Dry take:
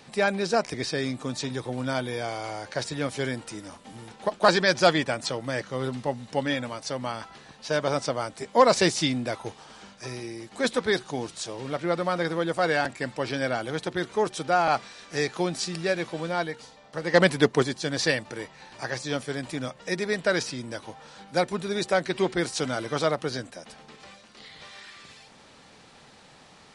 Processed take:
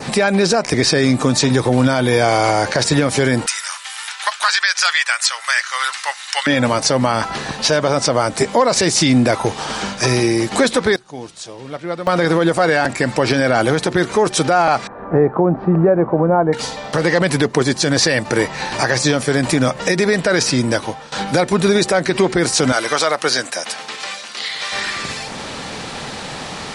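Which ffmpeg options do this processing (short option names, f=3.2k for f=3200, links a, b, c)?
-filter_complex "[0:a]asettb=1/sr,asplit=3[a][b][c];[a]atrim=end=3.464[d];[b]atrim=start=3.46:end=6.47,asetpts=PTS-STARTPTS,afade=t=in:d=0.004:c=qsin,afade=t=out:st=3.006:d=0.004:c=qsin,highpass=f=1.3k:w=0.5412,highpass=f=1.3k:w=1.3066[e];[c]atrim=start=6.466[f];[d][e]acrossfade=d=0.004:c1=hsin:c2=qsin[g];[g][f]acrossfade=d=0.004:c1=qsin:c2=hsin,asettb=1/sr,asplit=3[h][i][j];[h]atrim=end=14.874[k];[i]atrim=start=14.87:end=16.53,asetpts=PTS-STARTPTS,afade=t=in:d=0.004:c=qsin,afade=t=out:st=1.656:d=0.004:c=qsin,lowpass=f=1.1k:w=0.5412,lowpass=f=1.1k:w=1.3066[l];[j]atrim=start=16.526[m];[k][l]acrossfade=d=0.004:c1=hsin:c2=qsin[n];[n][m]acrossfade=d=0.004:c1=qsin:c2=hsin,asettb=1/sr,asplit=3[o][p][q];[o]atrim=end=22.724[r];[p]atrim=start=22.72:end=24.72,asetpts=PTS-STARTPTS,afade=t=in:d=0.004:c=qsin,afade=t=out:st=1.996:d=0.004:c=qsin,highpass=f=1.4k:p=1[s];[q]atrim=start=24.716[t];[r][s]acrossfade=d=0.004:c1=hsin:c2=qsin[u];[u][t]acrossfade=d=0.004:c1=qsin:c2=hsin,asplit=4[v][w][x][y];[v]atrim=end=10.96,asetpts=PTS-STARTPTS,afade=t=out:st=10.59:d=0.37:c=log:silence=0.0794328[z];[w]atrim=start=10.96:end=12.07,asetpts=PTS-STARTPTS,volume=-22dB[aa];[x]atrim=start=12.07:end=21.12,asetpts=PTS-STARTPTS,afade=t=in:d=0.37:c=log:silence=0.0794328,afade=t=out:st=8.4:d=0.65:silence=0.11885[ab];[y]atrim=start=21.12,asetpts=PTS-STARTPTS,afade=t=in:d=0.004:c=hsin:silence=0.11885[ac];[z][aa][ab][ac]concat=n=4:v=0:a=1,acompressor=threshold=-37dB:ratio=2,adynamicequalizer=threshold=0.00158:dfrequency=3300:dqfactor=2.1:tfrequency=3300:tqfactor=2.1:attack=5:release=100:ratio=0.375:range=2.5:mode=cutabove:tftype=bell,alimiter=level_in=27.5dB:limit=-1dB:release=50:level=0:latency=1,volume=-3.5dB"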